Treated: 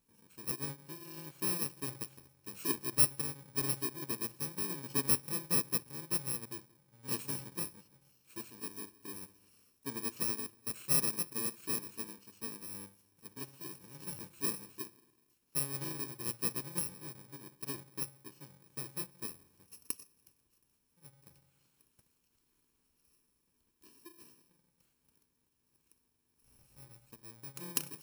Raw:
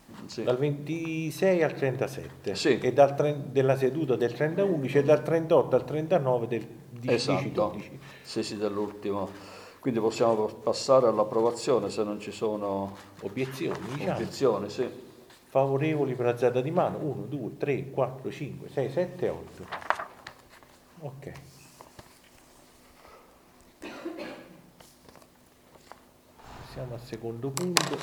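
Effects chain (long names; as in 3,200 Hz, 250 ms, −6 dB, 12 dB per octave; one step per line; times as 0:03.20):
samples in bit-reversed order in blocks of 64 samples
expander for the loud parts 1.5 to 1, over −40 dBFS
level −7.5 dB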